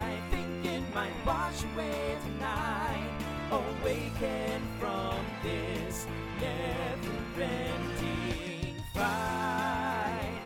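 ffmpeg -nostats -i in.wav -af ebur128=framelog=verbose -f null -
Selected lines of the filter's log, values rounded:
Integrated loudness:
  I:         -33.9 LUFS
  Threshold: -43.9 LUFS
Loudness range:
  LRA:         1.6 LU
  Threshold: -54.2 LUFS
  LRA low:   -35.0 LUFS
  LRA high:  -33.4 LUFS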